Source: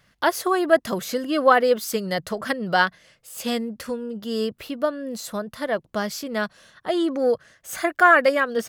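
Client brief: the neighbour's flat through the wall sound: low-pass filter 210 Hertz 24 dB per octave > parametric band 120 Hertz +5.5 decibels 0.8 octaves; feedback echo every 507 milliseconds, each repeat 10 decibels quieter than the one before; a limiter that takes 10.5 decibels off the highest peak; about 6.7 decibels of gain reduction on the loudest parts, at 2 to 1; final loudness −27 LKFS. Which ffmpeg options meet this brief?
ffmpeg -i in.wav -af "acompressor=threshold=-22dB:ratio=2,alimiter=limit=-20dB:level=0:latency=1,lowpass=frequency=210:width=0.5412,lowpass=frequency=210:width=1.3066,equalizer=frequency=120:width_type=o:width=0.8:gain=5.5,aecho=1:1:507|1014|1521|2028:0.316|0.101|0.0324|0.0104,volume=13dB" out.wav

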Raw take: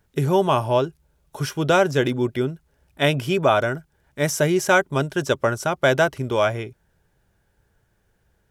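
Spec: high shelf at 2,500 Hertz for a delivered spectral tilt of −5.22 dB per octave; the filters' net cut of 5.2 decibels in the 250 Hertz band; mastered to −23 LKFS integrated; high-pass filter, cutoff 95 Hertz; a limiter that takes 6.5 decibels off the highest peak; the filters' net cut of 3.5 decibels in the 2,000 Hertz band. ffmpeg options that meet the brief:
ffmpeg -i in.wav -af "highpass=95,equalizer=frequency=250:width_type=o:gain=-8.5,equalizer=frequency=2000:width_type=o:gain=-3,highshelf=frequency=2500:gain=-4.5,volume=3.5dB,alimiter=limit=-10dB:level=0:latency=1" out.wav

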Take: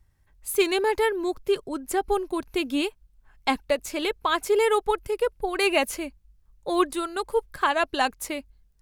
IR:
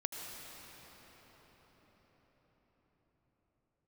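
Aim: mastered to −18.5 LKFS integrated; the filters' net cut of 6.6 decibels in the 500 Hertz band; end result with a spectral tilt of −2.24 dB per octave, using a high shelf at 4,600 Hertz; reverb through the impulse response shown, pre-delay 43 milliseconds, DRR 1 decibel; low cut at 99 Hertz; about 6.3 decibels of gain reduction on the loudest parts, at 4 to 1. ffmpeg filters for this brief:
-filter_complex "[0:a]highpass=99,equalizer=frequency=500:width_type=o:gain=-9,highshelf=frequency=4600:gain=5,acompressor=threshold=-27dB:ratio=4,asplit=2[link_01][link_02];[1:a]atrim=start_sample=2205,adelay=43[link_03];[link_02][link_03]afir=irnorm=-1:irlink=0,volume=-2.5dB[link_04];[link_01][link_04]amix=inputs=2:normalize=0,volume=11.5dB"

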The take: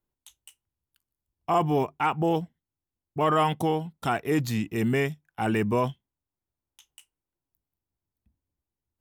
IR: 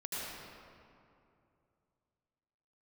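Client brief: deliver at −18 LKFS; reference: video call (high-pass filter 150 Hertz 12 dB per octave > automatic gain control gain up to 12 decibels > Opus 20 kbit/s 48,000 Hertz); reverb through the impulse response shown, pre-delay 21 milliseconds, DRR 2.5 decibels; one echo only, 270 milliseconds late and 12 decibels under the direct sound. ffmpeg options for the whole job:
-filter_complex "[0:a]aecho=1:1:270:0.251,asplit=2[link_01][link_02];[1:a]atrim=start_sample=2205,adelay=21[link_03];[link_02][link_03]afir=irnorm=-1:irlink=0,volume=-5.5dB[link_04];[link_01][link_04]amix=inputs=2:normalize=0,highpass=150,dynaudnorm=maxgain=12dB,volume=8dB" -ar 48000 -c:a libopus -b:a 20k

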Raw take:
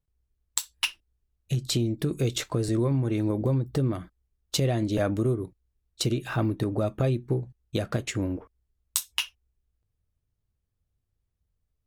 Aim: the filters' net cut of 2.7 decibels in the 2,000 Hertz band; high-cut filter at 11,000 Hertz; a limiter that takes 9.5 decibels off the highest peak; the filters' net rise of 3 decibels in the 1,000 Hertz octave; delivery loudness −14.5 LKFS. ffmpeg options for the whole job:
ffmpeg -i in.wav -af "lowpass=11000,equalizer=frequency=1000:width_type=o:gain=5.5,equalizer=frequency=2000:width_type=o:gain=-5.5,volume=15.5dB,alimiter=limit=-2.5dB:level=0:latency=1" out.wav

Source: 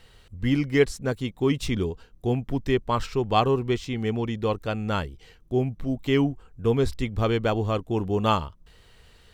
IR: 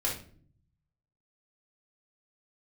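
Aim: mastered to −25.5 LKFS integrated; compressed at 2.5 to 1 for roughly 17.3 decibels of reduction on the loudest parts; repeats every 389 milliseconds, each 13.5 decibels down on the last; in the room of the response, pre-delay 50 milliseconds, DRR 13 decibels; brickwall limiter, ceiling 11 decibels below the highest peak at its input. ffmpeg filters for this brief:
-filter_complex "[0:a]acompressor=threshold=-42dB:ratio=2.5,alimiter=level_in=11dB:limit=-24dB:level=0:latency=1,volume=-11dB,aecho=1:1:389|778:0.211|0.0444,asplit=2[link_01][link_02];[1:a]atrim=start_sample=2205,adelay=50[link_03];[link_02][link_03]afir=irnorm=-1:irlink=0,volume=-19.5dB[link_04];[link_01][link_04]amix=inputs=2:normalize=0,volume=19.5dB"

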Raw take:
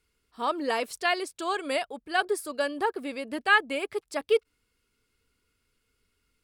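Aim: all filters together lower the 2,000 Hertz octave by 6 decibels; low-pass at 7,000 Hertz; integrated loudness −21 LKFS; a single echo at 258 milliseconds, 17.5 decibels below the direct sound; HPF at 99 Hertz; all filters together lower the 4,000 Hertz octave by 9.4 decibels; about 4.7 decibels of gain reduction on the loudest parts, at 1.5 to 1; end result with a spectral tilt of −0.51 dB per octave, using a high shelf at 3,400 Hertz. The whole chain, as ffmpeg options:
ffmpeg -i in.wav -af "highpass=99,lowpass=7000,equalizer=frequency=2000:width_type=o:gain=-4.5,highshelf=frequency=3400:gain=-9,equalizer=frequency=4000:width_type=o:gain=-5,acompressor=threshold=-31dB:ratio=1.5,aecho=1:1:258:0.133,volume=12.5dB" out.wav

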